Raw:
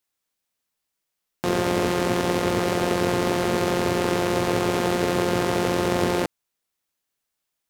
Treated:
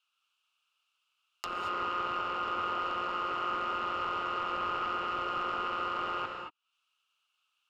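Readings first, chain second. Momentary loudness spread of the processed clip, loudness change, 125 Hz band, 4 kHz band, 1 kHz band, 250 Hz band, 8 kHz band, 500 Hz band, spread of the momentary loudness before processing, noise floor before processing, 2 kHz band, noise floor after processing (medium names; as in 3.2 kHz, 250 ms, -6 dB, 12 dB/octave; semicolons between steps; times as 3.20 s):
4 LU, -10.0 dB, -26.0 dB, -10.0 dB, -4.0 dB, -22.0 dB, under -25 dB, -19.0 dB, 2 LU, -81 dBFS, -9.0 dB, -81 dBFS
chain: two resonant band-passes 1.9 kHz, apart 1.1 oct; in parallel at -0.5 dB: peak limiter -28 dBFS, peak gain reduction 7 dB; on the sum: wavefolder -26.5 dBFS; low-pass that closes with the level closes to 2 kHz, closed at -36.5 dBFS; gated-style reverb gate 250 ms rising, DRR 2 dB; tape noise reduction on one side only encoder only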